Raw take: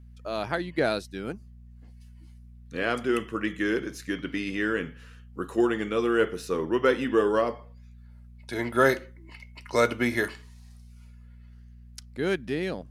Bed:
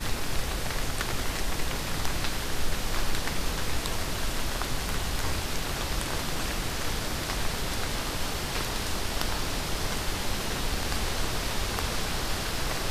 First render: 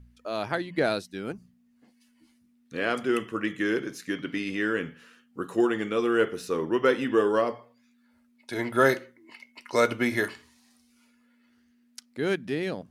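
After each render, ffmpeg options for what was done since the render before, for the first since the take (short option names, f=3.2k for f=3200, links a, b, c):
-af "bandreject=f=60:t=h:w=4,bandreject=f=120:t=h:w=4,bandreject=f=180:t=h:w=4"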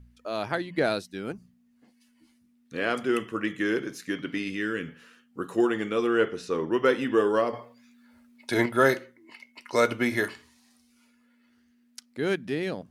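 -filter_complex "[0:a]asettb=1/sr,asplit=3[a][b][c];[a]atrim=end=4.484[d];[b]atrim=start=4.48:end=4.88,asetpts=PTS-STARTPTS,afade=t=in:d=0.004:c=qsin,afade=t=out:st=0.396:d=0.004:c=qsin,equalizer=f=770:t=o:w=1.4:g=-9.5[e];[c]atrim=start=4.876[f];[d][e]acrossfade=d=0.004:c1=hsin:c2=qsin[g];[g][f]acrossfade=d=0.004:c1=qsin:c2=hsin,asettb=1/sr,asplit=3[h][i][j];[h]atrim=end=6.074[k];[i]atrim=start=6.07:end=6.71,asetpts=PTS-STARTPTS,afade=t=in:d=0.004:c=qsin,afade=t=out:st=0.636:d=0.004:c=qsin,lowpass=7.1k[l];[j]atrim=start=6.706[m];[k][l]acrossfade=d=0.004:c1=hsin:c2=qsin[n];[n][m]acrossfade=d=0.004:c1=qsin:c2=hsin,asettb=1/sr,asplit=3[o][p][q];[o]atrim=end=7.534[r];[p]atrim=start=7.53:end=8.66,asetpts=PTS-STARTPTS,afade=t=in:d=0.004:c=qsin,afade=t=out:st=1.126:d=0.004:c=qsin,acontrast=75[s];[q]atrim=start=8.656[t];[r][s]acrossfade=d=0.004:c1=hsin:c2=qsin[u];[u][t]acrossfade=d=0.004:c1=qsin:c2=hsin"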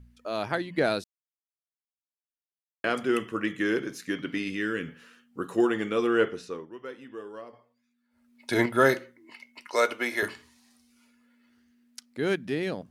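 -filter_complex "[0:a]asettb=1/sr,asplit=3[a][b][c];[a]atrim=end=9.674[d];[b]atrim=start=9.67:end=10.23,asetpts=PTS-STARTPTS,afade=t=in:d=0.004:c=qsin,afade=t=out:st=0.556:d=0.004:c=qsin,highpass=440[e];[c]atrim=start=10.226[f];[d][e]acrossfade=d=0.004:c1=hsin:c2=qsin[g];[g][f]acrossfade=d=0.004:c1=qsin:c2=hsin,asplit=5[h][i][j][k][l];[h]atrim=end=1.04,asetpts=PTS-STARTPTS,afade=t=out:st=1.036:d=0.004:c=hsin[m];[i]atrim=start=1.04:end=2.84,asetpts=PTS-STARTPTS,volume=0[n];[j]atrim=start=2.84:end=6.67,asetpts=PTS-STARTPTS,afade=t=in:d=0.004:c=hsin,afade=t=out:st=3.41:d=0.42:silence=0.125893[o];[k]atrim=start=6.67:end=8.1,asetpts=PTS-STARTPTS,volume=-18dB[p];[l]atrim=start=8.1,asetpts=PTS-STARTPTS,afade=t=in:d=0.42:silence=0.125893[q];[m][n][o][p][q]concat=n=5:v=0:a=1"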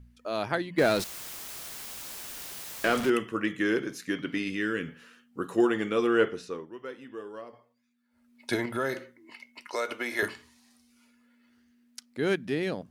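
-filter_complex "[0:a]asettb=1/sr,asplit=3[a][b][c];[a]atrim=end=0.784[d];[b]atrim=start=0.78:end=3.1,asetpts=PTS-STARTPTS,afade=t=in:d=0.004:c=qsin,afade=t=out:st=2.316:d=0.004:c=qsin,aeval=exprs='val(0)+0.5*0.0355*sgn(val(0))':c=same[e];[c]atrim=start=3.096[f];[d][e]acrossfade=d=0.004:c1=hsin:c2=qsin[g];[g][f]acrossfade=d=0.004:c1=qsin:c2=hsin,asettb=1/sr,asplit=3[h][i][j];[h]atrim=end=8.554[k];[i]atrim=start=8.55:end=10.19,asetpts=PTS-STARTPTS,afade=t=in:d=0.004:c=qsin,afade=t=out:st=1.636:d=0.004:c=qsin,acompressor=threshold=-28dB:ratio=3:attack=3.2:release=140:knee=1:detection=peak[l];[j]atrim=start=10.186[m];[k][l]acrossfade=d=0.004:c1=hsin:c2=qsin[n];[n][m]acrossfade=d=0.004:c1=qsin:c2=hsin"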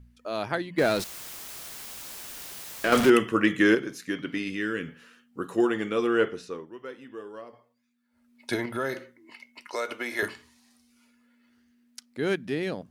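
-filter_complex "[0:a]asettb=1/sr,asplit=3[a][b][c];[a]atrim=end=2.924[d];[b]atrim=start=2.92:end=3.75,asetpts=PTS-STARTPTS,afade=t=in:d=0.004:c=qsin,afade=t=out:st=0.826:d=0.004:c=qsin,acontrast=84[e];[c]atrim=start=3.746[f];[d][e]acrossfade=d=0.004:c1=hsin:c2=qsin[g];[g][f]acrossfade=d=0.004:c1=qsin:c2=hsin,asettb=1/sr,asplit=3[h][i][j];[h]atrim=end=8.544[k];[i]atrim=start=8.54:end=9,asetpts=PTS-STARTPTS,afade=t=in:d=0.004:c=qsin,afade=t=out:st=0.456:d=0.004:c=qsin,bandreject=f=7.6k:w=6.2[l];[j]atrim=start=8.996[m];[k][l]acrossfade=d=0.004:c1=hsin:c2=qsin[n];[n][m]acrossfade=d=0.004:c1=qsin:c2=hsin"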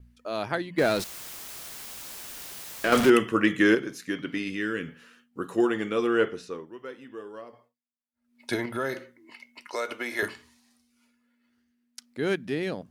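-af "agate=range=-33dB:threshold=-58dB:ratio=3:detection=peak"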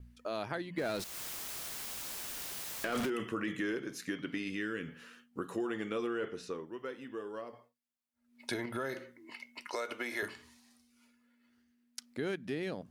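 -af "alimiter=limit=-17.5dB:level=0:latency=1:release=12,acompressor=threshold=-37dB:ratio=2.5"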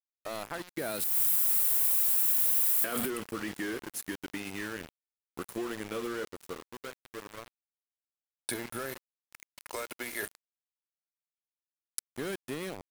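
-af "aexciter=amount=6.8:drive=3.9:freq=8.1k,aeval=exprs='val(0)*gte(abs(val(0)),0.0133)':c=same"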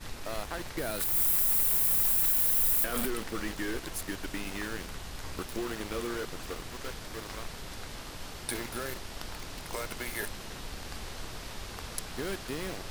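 -filter_complex "[1:a]volume=-11.5dB[a];[0:a][a]amix=inputs=2:normalize=0"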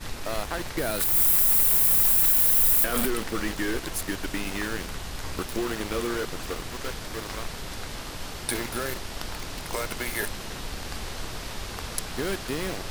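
-af "volume=6dB"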